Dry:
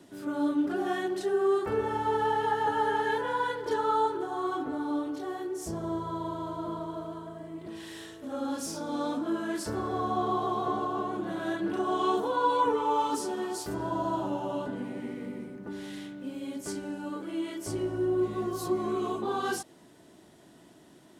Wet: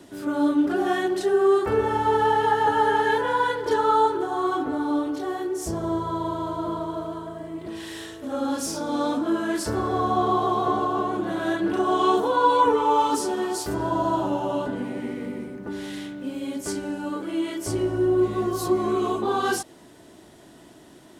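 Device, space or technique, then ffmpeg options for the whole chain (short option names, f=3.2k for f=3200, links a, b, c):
low shelf boost with a cut just above: -af "lowshelf=f=70:g=6,equalizer=f=170:t=o:w=0.82:g=-4,volume=7dB"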